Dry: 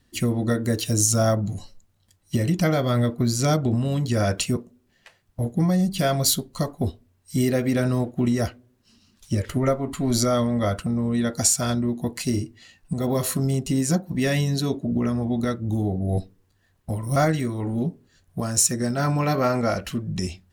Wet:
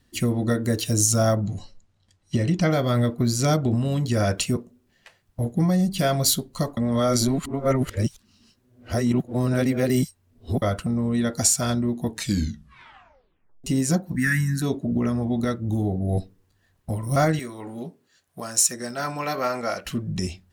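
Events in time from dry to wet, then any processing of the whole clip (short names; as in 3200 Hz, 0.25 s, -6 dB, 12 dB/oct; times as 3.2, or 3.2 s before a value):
1.46–2.7 LPF 6600 Hz
6.77–10.62 reverse
12.04 tape stop 1.60 s
14.16–14.62 EQ curve 260 Hz 0 dB, 490 Hz -30 dB, 780 Hz -23 dB, 1600 Hz +13 dB, 3200 Hz -16 dB, 8400 Hz +3 dB
17.39–19.86 HPF 670 Hz 6 dB/oct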